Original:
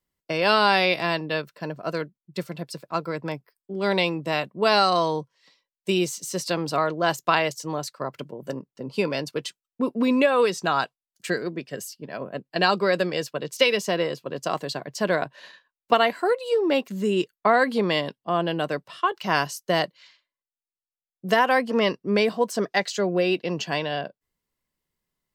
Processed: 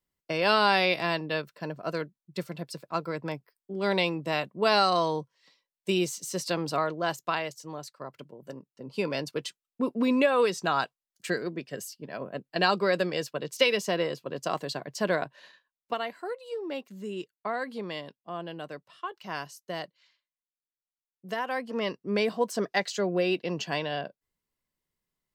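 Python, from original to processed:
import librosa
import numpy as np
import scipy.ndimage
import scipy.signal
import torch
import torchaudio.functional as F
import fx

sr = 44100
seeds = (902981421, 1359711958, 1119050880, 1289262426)

y = fx.gain(x, sr, db=fx.line((6.69, -3.5), (7.51, -10.0), (8.68, -10.0), (9.15, -3.5), (15.11, -3.5), (15.99, -13.0), (21.32, -13.0), (22.37, -4.0)))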